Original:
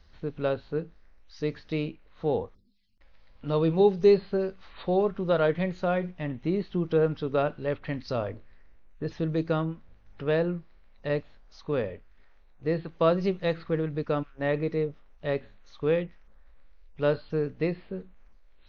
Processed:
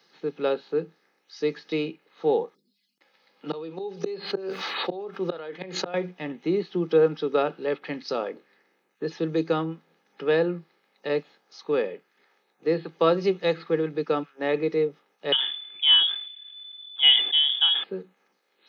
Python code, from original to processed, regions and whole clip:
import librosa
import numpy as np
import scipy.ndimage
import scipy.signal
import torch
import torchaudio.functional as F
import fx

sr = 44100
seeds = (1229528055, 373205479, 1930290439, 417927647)

y = fx.chain(x, sr, fx.highpass(hz=230.0, slope=6),
    fx.gate_flip(shuts_db=-20.0, range_db=-38),
    fx.env_flatten(amount_pct=70), at=(3.49, 5.94))
y = fx.chain(y, sr, fx.freq_invert(carrier_hz=3500),
    fx.sustainer(db_per_s=64.0), at=(15.32, 17.84))
y = scipy.signal.sosfilt(scipy.signal.butter(12, 160.0, 'highpass', fs=sr, output='sos'), y)
y = fx.high_shelf(y, sr, hz=3900.0, db=6.0)
y = y + 0.51 * np.pad(y, (int(2.4 * sr / 1000.0), 0))[:len(y)]
y = y * librosa.db_to_amplitude(2.0)